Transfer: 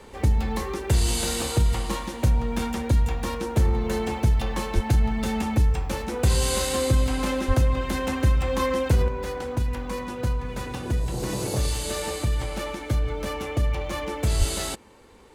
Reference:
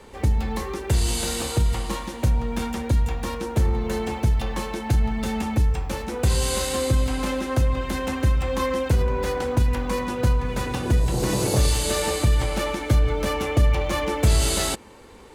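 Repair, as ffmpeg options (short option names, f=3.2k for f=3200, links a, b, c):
-filter_complex "[0:a]asplit=3[a][b][c];[a]afade=t=out:st=4.74:d=0.02[d];[b]highpass=f=140:w=0.5412,highpass=f=140:w=1.3066,afade=t=in:st=4.74:d=0.02,afade=t=out:st=4.86:d=0.02[e];[c]afade=t=in:st=4.86:d=0.02[f];[d][e][f]amix=inputs=3:normalize=0,asplit=3[g][h][i];[g]afade=t=out:st=7.47:d=0.02[j];[h]highpass=f=140:w=0.5412,highpass=f=140:w=1.3066,afade=t=in:st=7.47:d=0.02,afade=t=out:st=7.59:d=0.02[k];[i]afade=t=in:st=7.59:d=0.02[l];[j][k][l]amix=inputs=3:normalize=0,asplit=3[m][n][o];[m]afade=t=out:st=14.38:d=0.02[p];[n]highpass=f=140:w=0.5412,highpass=f=140:w=1.3066,afade=t=in:st=14.38:d=0.02,afade=t=out:st=14.5:d=0.02[q];[o]afade=t=in:st=14.5:d=0.02[r];[p][q][r]amix=inputs=3:normalize=0,asetnsamples=n=441:p=0,asendcmd='9.08 volume volume 5.5dB',volume=0dB"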